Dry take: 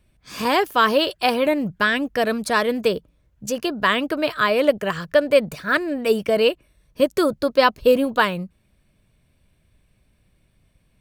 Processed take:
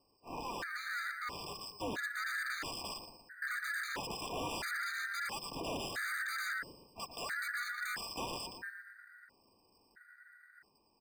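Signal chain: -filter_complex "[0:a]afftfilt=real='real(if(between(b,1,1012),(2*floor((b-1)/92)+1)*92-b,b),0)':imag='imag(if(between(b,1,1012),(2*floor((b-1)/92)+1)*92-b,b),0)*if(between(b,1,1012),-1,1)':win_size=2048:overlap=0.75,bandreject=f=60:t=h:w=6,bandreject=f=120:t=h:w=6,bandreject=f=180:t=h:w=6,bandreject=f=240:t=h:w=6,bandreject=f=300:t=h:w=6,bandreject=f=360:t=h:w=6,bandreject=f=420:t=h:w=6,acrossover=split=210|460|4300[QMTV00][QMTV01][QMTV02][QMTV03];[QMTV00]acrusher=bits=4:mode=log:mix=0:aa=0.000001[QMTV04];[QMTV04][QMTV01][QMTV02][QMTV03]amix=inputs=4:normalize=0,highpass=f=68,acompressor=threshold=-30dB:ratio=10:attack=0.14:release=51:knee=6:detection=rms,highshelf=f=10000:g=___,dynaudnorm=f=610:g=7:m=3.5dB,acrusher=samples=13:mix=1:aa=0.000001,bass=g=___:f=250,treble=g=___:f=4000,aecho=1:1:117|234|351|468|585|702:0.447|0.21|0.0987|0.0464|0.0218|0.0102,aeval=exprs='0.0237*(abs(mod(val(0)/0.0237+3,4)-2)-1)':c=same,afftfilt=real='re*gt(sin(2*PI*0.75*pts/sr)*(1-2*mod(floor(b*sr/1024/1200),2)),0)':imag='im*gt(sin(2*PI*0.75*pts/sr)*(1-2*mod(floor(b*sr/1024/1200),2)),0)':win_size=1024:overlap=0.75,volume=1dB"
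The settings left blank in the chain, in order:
-10.5, -4, -12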